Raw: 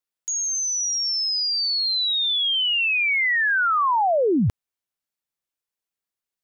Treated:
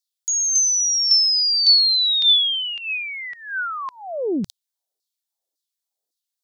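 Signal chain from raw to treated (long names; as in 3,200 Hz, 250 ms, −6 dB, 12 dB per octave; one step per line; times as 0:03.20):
flat-topped bell 1,700 Hz −15.5 dB
auto-filter high-pass saw down 1.8 Hz 340–5,000 Hz
highs frequency-modulated by the lows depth 0.13 ms
level +4.5 dB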